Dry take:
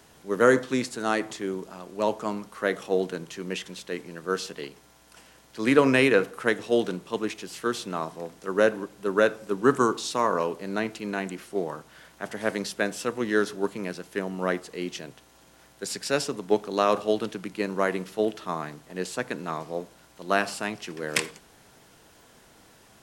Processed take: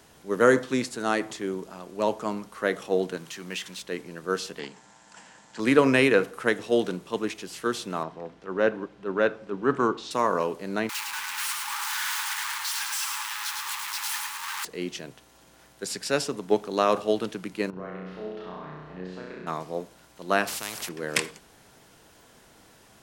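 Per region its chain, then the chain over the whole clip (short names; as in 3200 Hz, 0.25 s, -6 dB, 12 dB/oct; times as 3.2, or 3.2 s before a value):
3.17–3.82 G.711 law mismatch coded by mu + HPF 240 Hz 6 dB/oct + bell 440 Hz -8 dB 1.4 oct
4.59–5.6 speaker cabinet 120–8000 Hz, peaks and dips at 200 Hz +6 dB, 370 Hz -5 dB, 890 Hz +9 dB, 1700 Hz +7 dB, 7400 Hz +10 dB + Doppler distortion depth 0.24 ms
8.03–10.11 LPF 3400 Hz + transient shaper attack -6 dB, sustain -1 dB
10.89–14.65 infinite clipping + brick-wall FIR high-pass 800 Hz + lo-fi delay 0.107 s, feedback 55%, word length 9-bit, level -3.5 dB
17.7–19.47 compressor 3:1, threshold -42 dBFS + air absorption 280 m + flutter echo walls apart 5.6 m, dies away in 1.3 s
20.47–20.89 low shelf 160 Hz -12 dB + spectral compressor 4:1
whole clip: dry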